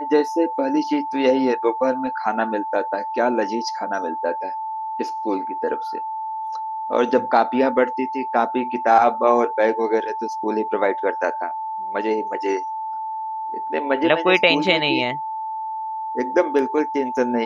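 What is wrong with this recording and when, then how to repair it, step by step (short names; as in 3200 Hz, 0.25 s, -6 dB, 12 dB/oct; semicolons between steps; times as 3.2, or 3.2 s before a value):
tone 880 Hz -25 dBFS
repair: notch 880 Hz, Q 30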